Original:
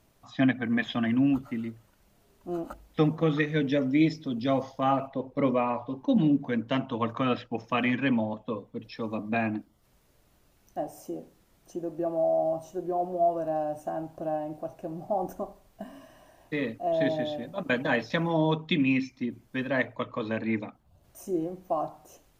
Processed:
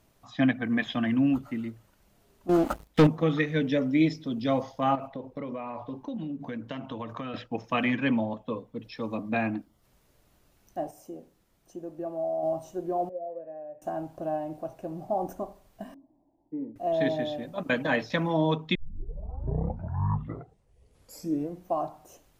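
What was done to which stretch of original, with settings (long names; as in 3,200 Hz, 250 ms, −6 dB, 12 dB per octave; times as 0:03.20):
0:02.49–0:03.07: leveller curve on the samples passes 3
0:04.95–0:07.34: downward compressor 12 to 1, threshold −31 dBFS
0:10.91–0:12.43: clip gain −5 dB
0:13.09–0:13.82: formant resonators in series e
0:15.94–0:16.76: formant resonators in series u
0:18.75: tape start 2.94 s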